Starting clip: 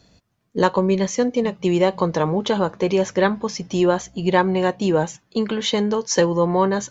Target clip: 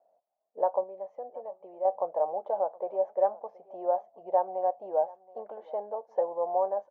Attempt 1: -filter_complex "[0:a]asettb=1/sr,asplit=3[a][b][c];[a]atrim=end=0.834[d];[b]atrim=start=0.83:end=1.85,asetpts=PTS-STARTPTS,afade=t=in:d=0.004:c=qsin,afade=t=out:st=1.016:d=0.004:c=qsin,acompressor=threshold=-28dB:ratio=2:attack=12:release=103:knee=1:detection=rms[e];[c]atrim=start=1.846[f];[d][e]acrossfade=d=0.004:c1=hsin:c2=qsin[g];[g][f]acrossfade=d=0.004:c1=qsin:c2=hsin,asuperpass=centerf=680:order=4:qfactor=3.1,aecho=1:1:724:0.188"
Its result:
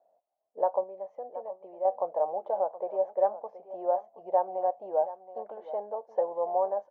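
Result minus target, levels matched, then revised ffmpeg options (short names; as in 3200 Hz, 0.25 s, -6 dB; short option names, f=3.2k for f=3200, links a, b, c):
echo-to-direct +7 dB
-filter_complex "[0:a]asettb=1/sr,asplit=3[a][b][c];[a]atrim=end=0.834[d];[b]atrim=start=0.83:end=1.85,asetpts=PTS-STARTPTS,afade=t=in:d=0.004:c=qsin,afade=t=out:st=1.016:d=0.004:c=qsin,acompressor=threshold=-28dB:ratio=2:attack=12:release=103:knee=1:detection=rms[e];[c]atrim=start=1.846[f];[d][e]acrossfade=d=0.004:c1=hsin:c2=qsin[g];[g][f]acrossfade=d=0.004:c1=qsin:c2=hsin,asuperpass=centerf=680:order=4:qfactor=3.1,aecho=1:1:724:0.0841"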